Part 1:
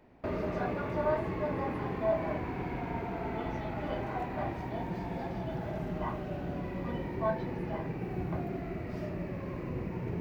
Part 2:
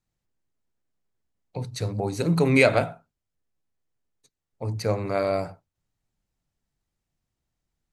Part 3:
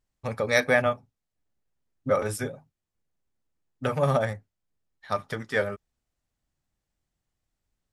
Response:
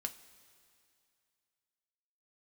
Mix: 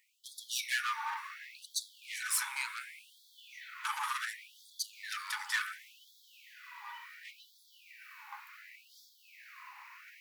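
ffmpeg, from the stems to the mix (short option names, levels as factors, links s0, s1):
-filter_complex "[0:a]volume=0.708,asplit=2[s0][s1];[s1]volume=0.447[s2];[1:a]acompressor=threshold=0.0447:ratio=6,volume=0.75[s3];[2:a]volume=0.891,asplit=2[s4][s5];[s5]volume=0.596[s6];[s3][s4]amix=inputs=2:normalize=0,acompressor=threshold=0.0447:ratio=6,volume=1[s7];[3:a]atrim=start_sample=2205[s8];[s2][s6]amix=inputs=2:normalize=0[s9];[s9][s8]afir=irnorm=-1:irlink=0[s10];[s0][s7][s10]amix=inputs=3:normalize=0,highshelf=f=5000:g=9.5,asoftclip=type=hard:threshold=0.0562,afftfilt=real='re*gte(b*sr/1024,800*pow(3300/800,0.5+0.5*sin(2*PI*0.69*pts/sr)))':imag='im*gte(b*sr/1024,800*pow(3300/800,0.5+0.5*sin(2*PI*0.69*pts/sr)))':win_size=1024:overlap=0.75"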